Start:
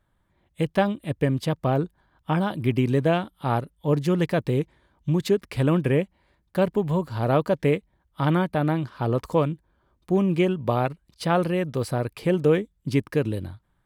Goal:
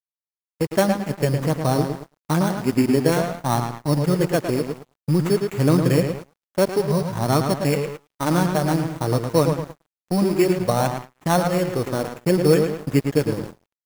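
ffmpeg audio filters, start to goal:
-filter_complex "[0:a]acrusher=samples=9:mix=1:aa=0.000001,equalizer=f=3600:t=o:w=0.86:g=-6,asplit=2[s0][s1];[s1]adelay=110,lowpass=f=4700:p=1,volume=0.531,asplit=2[s2][s3];[s3]adelay=110,lowpass=f=4700:p=1,volume=0.46,asplit=2[s4][s5];[s5]adelay=110,lowpass=f=4700:p=1,volume=0.46,asplit=2[s6][s7];[s7]adelay=110,lowpass=f=4700:p=1,volume=0.46,asplit=2[s8][s9];[s9]adelay=110,lowpass=f=4700:p=1,volume=0.46,asplit=2[s10][s11];[s11]adelay=110,lowpass=f=4700:p=1,volume=0.46[s12];[s0][s2][s4][s6][s8][s10][s12]amix=inputs=7:normalize=0,flanger=delay=0.9:depth=5.8:regen=-42:speed=0.27:shape=sinusoidal,acrusher=bits=8:mix=0:aa=0.000001,highpass=97,aeval=exprs='sgn(val(0))*max(abs(val(0))-0.01,0)':c=same,agate=range=0.178:threshold=0.0112:ratio=16:detection=peak,volume=2.37"

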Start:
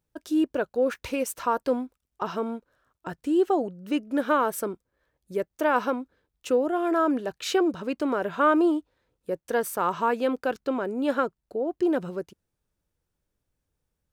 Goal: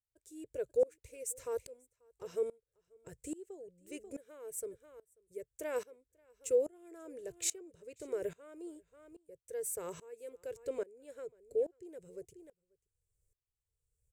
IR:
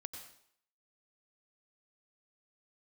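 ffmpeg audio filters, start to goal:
-af "firequalizer=gain_entry='entry(120,0);entry(220,-29);entry(440,-3);entry(750,-25);entry(1300,-26);entry(2100,-10);entry(3000,-18);entry(5000,-12);entry(7600,6);entry(12000,-4)':delay=0.05:min_phase=1,aecho=1:1:538:0.0891,aeval=exprs='val(0)*pow(10,-24*if(lt(mod(-1.2*n/s,1),2*abs(-1.2)/1000),1-mod(-1.2*n/s,1)/(2*abs(-1.2)/1000),(mod(-1.2*n/s,1)-2*abs(-1.2)/1000)/(1-2*abs(-1.2)/1000))/20)':c=same,volume=1.68"

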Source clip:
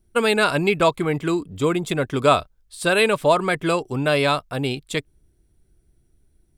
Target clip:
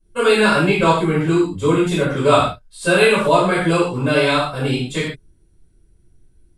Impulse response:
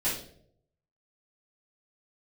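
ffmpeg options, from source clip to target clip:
-filter_complex "[1:a]atrim=start_sample=2205,atrim=end_sample=3969,asetrate=24255,aresample=44100[s0];[0:a][s0]afir=irnorm=-1:irlink=0,volume=0.355"

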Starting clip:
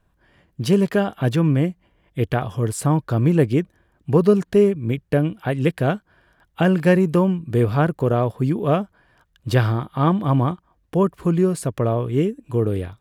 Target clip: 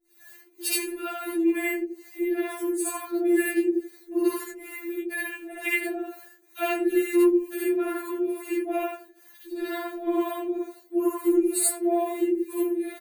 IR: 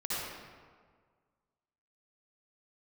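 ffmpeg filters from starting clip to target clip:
-filter_complex "[0:a]equalizer=f=5500:t=o:w=0.89:g=-10,acrusher=bits=10:mix=0:aa=0.000001,highpass=f=340:p=1,aemphasis=mode=production:type=75kf,aecho=1:1:6.3:0.79,asplit=2[s0][s1];[s1]adelay=83,lowpass=f=1400:p=1,volume=0.631,asplit=2[s2][s3];[s3]adelay=83,lowpass=f=1400:p=1,volume=0.28,asplit=2[s4][s5];[s5]adelay=83,lowpass=f=1400:p=1,volume=0.28,asplit=2[s6][s7];[s7]adelay=83,lowpass=f=1400:p=1,volume=0.28[s8];[s2][s4][s6][s8]amix=inputs=4:normalize=0[s9];[s0][s9]amix=inputs=2:normalize=0,acrossover=split=500[s10][s11];[s10]aeval=exprs='val(0)*(1-1/2+1/2*cos(2*PI*2.2*n/s))':c=same[s12];[s11]aeval=exprs='val(0)*(1-1/2-1/2*cos(2*PI*2.2*n/s))':c=same[s13];[s12][s13]amix=inputs=2:normalize=0,asplit=2[s14][s15];[s15]acompressor=threshold=0.0158:ratio=6,volume=1.19[s16];[s14][s16]amix=inputs=2:normalize=0[s17];[1:a]atrim=start_sample=2205,afade=t=out:st=0.14:d=0.01,atrim=end_sample=6615[s18];[s17][s18]afir=irnorm=-1:irlink=0,afftfilt=real='re*4*eq(mod(b,16),0)':imag='im*4*eq(mod(b,16),0)':win_size=2048:overlap=0.75"

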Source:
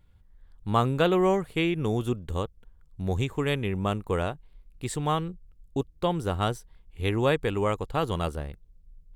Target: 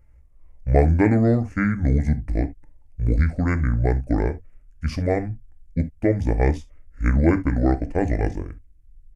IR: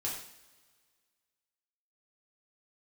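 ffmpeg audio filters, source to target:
-filter_complex "[0:a]asetrate=26990,aresample=44100,atempo=1.63392,equalizer=f=500:t=o:w=1:g=4,equalizer=f=1000:t=o:w=1:g=-5,equalizer=f=2000:t=o:w=1:g=4,equalizer=f=4000:t=o:w=1:g=-9,asplit=2[s0][s1];[1:a]atrim=start_sample=2205,atrim=end_sample=3528,lowshelf=f=200:g=11[s2];[s1][s2]afir=irnorm=-1:irlink=0,volume=0.335[s3];[s0][s3]amix=inputs=2:normalize=0,volume=1.19"

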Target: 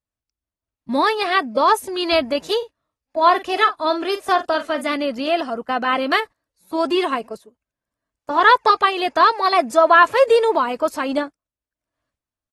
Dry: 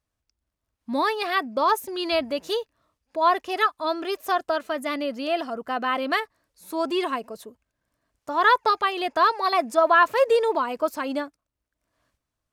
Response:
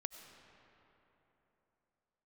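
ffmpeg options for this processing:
-filter_complex "[0:a]asplit=3[s0][s1][s2];[s0]afade=t=out:st=2.6:d=0.02[s3];[s1]asplit=2[s4][s5];[s5]adelay=45,volume=0.251[s6];[s4][s6]amix=inputs=2:normalize=0,afade=t=in:st=2.6:d=0.02,afade=t=out:st=4.84:d=0.02[s7];[s2]afade=t=in:st=4.84:d=0.02[s8];[s3][s7][s8]amix=inputs=3:normalize=0,agate=range=0.178:threshold=0.0141:ratio=16:detection=peak,volume=1.88" -ar 48000 -c:a aac -b:a 32k

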